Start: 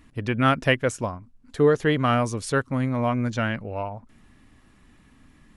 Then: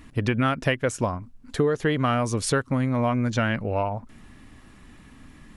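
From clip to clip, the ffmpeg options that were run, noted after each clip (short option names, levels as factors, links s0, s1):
-af "acompressor=threshold=0.0501:ratio=6,volume=2.11"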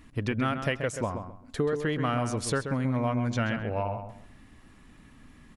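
-filter_complex "[0:a]asplit=2[s0][s1];[s1]adelay=132,lowpass=f=2900:p=1,volume=0.422,asplit=2[s2][s3];[s3]adelay=132,lowpass=f=2900:p=1,volume=0.25,asplit=2[s4][s5];[s5]adelay=132,lowpass=f=2900:p=1,volume=0.25[s6];[s0][s2][s4][s6]amix=inputs=4:normalize=0,volume=0.531"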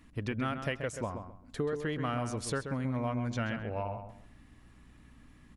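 -af "aeval=exprs='val(0)+0.002*(sin(2*PI*60*n/s)+sin(2*PI*2*60*n/s)/2+sin(2*PI*3*60*n/s)/3+sin(2*PI*4*60*n/s)/4+sin(2*PI*5*60*n/s)/5)':c=same,volume=0.531"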